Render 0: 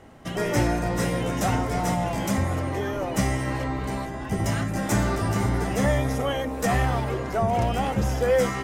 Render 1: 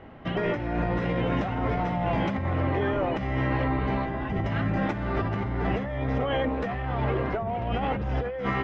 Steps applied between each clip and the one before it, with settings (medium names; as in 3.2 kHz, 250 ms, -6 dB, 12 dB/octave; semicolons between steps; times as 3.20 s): low-pass 3.2 kHz 24 dB/octave; compressor with a negative ratio -27 dBFS, ratio -1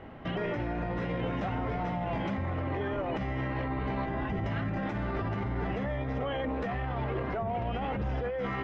peak limiter -24.5 dBFS, peak gain reduction 10 dB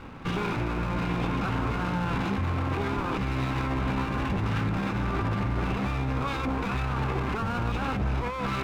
comb filter that takes the minimum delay 0.8 ms; trim +5.5 dB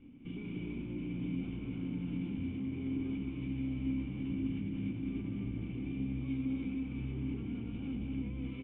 cascade formant filter i; on a send: loudspeakers at several distances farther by 68 m -4 dB, 99 m -3 dB; on the sum: trim -4 dB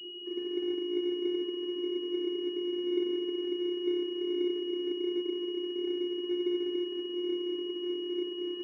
vocoder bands 8, square 354 Hz; class-D stage that switches slowly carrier 2.9 kHz; trim +5.5 dB